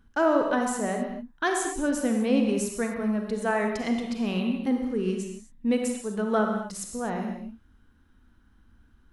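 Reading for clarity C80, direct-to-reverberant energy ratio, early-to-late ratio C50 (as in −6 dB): 5.0 dB, 2.5 dB, 3.5 dB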